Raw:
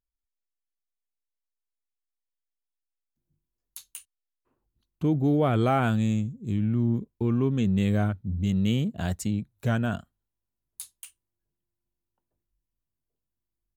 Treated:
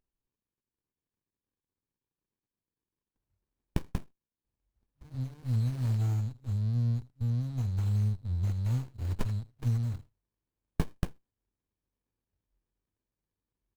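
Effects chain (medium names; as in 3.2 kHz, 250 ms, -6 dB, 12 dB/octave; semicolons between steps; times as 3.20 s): rattle on loud lows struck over -36 dBFS, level -33 dBFS; 3.87–5.15 s: graphic EQ 125/250/500/1000/2000/8000 Hz -11/+10/-12/+11/-11/-4 dB; speakerphone echo 80 ms, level -6 dB; FFT band-reject 130–4000 Hz; treble shelf 2.2 kHz +9.5 dB; sliding maximum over 65 samples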